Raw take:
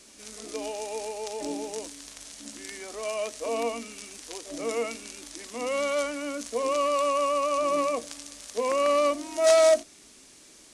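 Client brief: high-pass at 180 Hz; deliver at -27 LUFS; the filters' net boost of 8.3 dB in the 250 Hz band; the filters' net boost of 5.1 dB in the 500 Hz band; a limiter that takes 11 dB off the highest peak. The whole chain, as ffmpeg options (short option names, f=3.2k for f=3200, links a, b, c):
-af "highpass=180,equalizer=f=250:t=o:g=9,equalizer=f=500:t=o:g=5,volume=-0.5dB,alimiter=limit=-17dB:level=0:latency=1"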